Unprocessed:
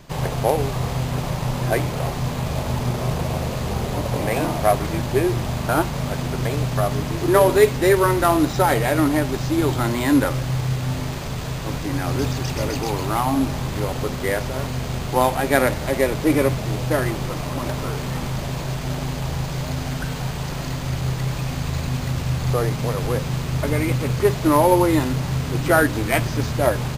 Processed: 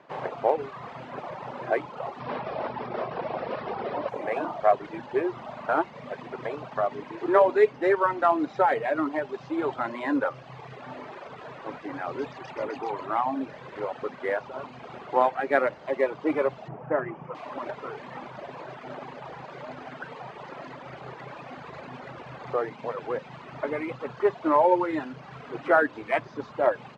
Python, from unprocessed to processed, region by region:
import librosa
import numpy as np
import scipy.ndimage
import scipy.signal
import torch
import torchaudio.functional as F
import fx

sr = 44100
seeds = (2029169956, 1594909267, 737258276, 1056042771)

y = fx.chain(x, sr, fx.brickwall_lowpass(high_hz=5800.0),
    fx.env_flatten(amount_pct=70), at=(2.2, 4.09))
y = fx.chain(y, sr, fx.moving_average(points=11),
    fx.peak_eq(hz=150.0, db=12.5, octaves=0.33), at=(16.68, 17.35))
y = scipy.signal.sosfilt(scipy.signal.butter(2, 1700.0, 'lowpass', fs=sr, output='sos'), y)
y = fx.dereverb_blind(y, sr, rt60_s=1.5)
y = scipy.signal.sosfilt(scipy.signal.butter(2, 420.0, 'highpass', fs=sr, output='sos'), y)
y = y * librosa.db_to_amplitude(-1.5)